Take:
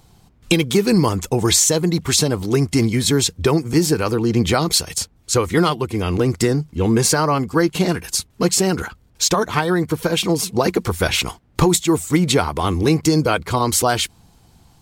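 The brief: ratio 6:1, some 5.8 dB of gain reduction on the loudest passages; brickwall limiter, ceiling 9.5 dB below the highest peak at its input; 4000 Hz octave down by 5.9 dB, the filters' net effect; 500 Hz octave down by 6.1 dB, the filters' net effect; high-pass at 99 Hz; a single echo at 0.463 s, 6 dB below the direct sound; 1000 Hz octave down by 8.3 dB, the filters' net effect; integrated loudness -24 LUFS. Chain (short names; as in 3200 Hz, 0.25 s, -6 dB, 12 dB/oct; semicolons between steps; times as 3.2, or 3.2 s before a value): HPF 99 Hz; bell 500 Hz -6.5 dB; bell 1000 Hz -8.5 dB; bell 4000 Hz -7 dB; compressor 6:1, threshold -19 dBFS; limiter -18.5 dBFS; echo 0.463 s -6 dB; gain +3 dB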